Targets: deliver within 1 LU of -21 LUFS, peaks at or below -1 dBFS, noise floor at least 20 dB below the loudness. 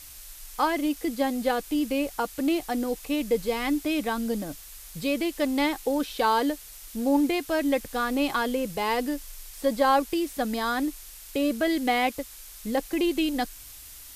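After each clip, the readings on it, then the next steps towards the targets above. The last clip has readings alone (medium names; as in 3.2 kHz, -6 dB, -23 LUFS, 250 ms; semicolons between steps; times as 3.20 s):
noise floor -45 dBFS; noise floor target -47 dBFS; loudness -27.0 LUFS; peak level -10.5 dBFS; loudness target -21.0 LUFS
-> noise reduction 6 dB, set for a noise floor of -45 dBFS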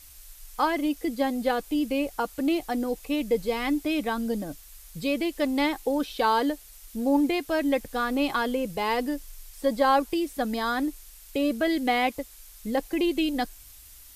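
noise floor -49 dBFS; loudness -27.0 LUFS; peak level -11.0 dBFS; loudness target -21.0 LUFS
-> trim +6 dB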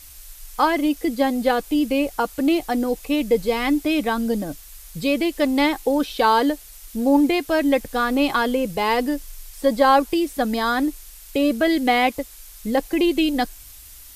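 loudness -21.0 LUFS; peak level -5.0 dBFS; noise floor -43 dBFS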